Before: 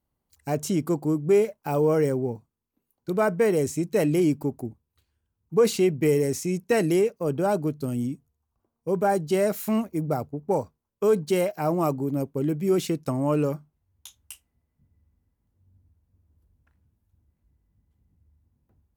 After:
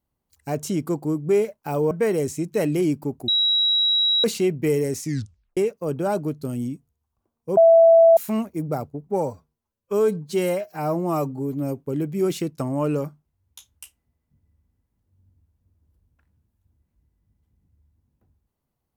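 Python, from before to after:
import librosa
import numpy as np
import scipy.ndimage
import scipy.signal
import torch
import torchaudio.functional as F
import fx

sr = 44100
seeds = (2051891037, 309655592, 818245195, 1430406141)

y = fx.edit(x, sr, fx.cut(start_s=1.91, length_s=1.39),
    fx.bleep(start_s=4.67, length_s=0.96, hz=3870.0, db=-16.5),
    fx.tape_stop(start_s=6.41, length_s=0.55),
    fx.bleep(start_s=8.96, length_s=0.6, hz=662.0, db=-9.0),
    fx.stretch_span(start_s=10.46, length_s=1.82, factor=1.5), tone=tone)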